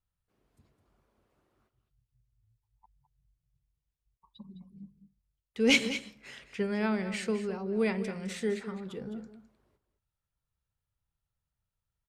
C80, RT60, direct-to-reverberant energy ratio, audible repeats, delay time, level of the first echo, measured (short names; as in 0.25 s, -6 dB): none, none, none, 1, 0.209 s, -12.0 dB